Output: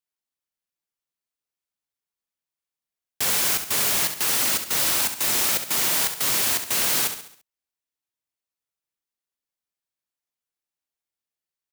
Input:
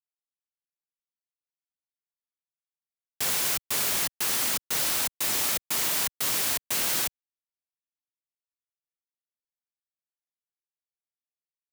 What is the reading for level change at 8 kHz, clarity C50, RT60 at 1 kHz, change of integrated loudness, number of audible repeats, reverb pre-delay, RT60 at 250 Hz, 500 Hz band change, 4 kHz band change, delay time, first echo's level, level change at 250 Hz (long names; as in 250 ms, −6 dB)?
+4.5 dB, no reverb audible, no reverb audible, +4.5 dB, 4, no reverb audible, no reverb audible, +4.5 dB, +4.5 dB, 68 ms, −9.0 dB, +5.0 dB